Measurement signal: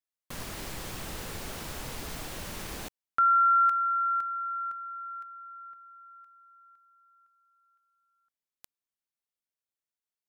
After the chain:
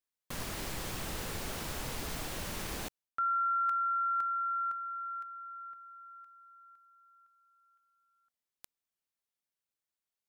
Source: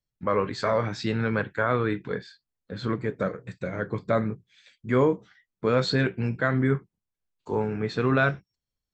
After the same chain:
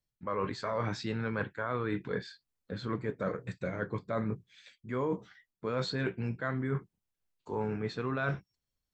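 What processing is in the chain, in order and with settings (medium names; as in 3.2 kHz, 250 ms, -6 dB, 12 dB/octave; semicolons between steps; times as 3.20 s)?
dynamic bell 1 kHz, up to +4 dB, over -41 dBFS, Q 2.6; reverse; compression 6:1, threshold -30 dBFS; reverse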